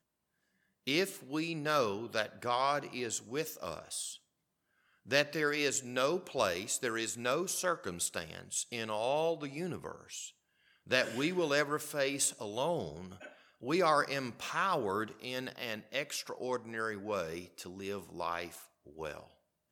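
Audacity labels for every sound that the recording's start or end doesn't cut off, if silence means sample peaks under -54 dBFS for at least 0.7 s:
0.870000	4.170000	sound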